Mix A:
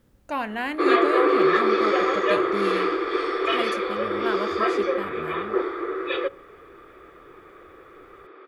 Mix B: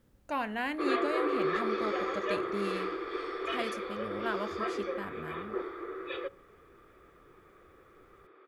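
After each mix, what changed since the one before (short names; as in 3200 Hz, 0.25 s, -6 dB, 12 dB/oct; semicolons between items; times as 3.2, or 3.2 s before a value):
speech -5.0 dB; background -11.5 dB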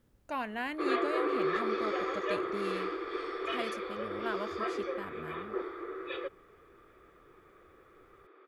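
reverb: off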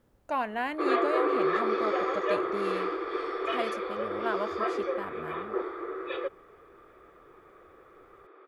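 master: add bell 740 Hz +7.5 dB 2 oct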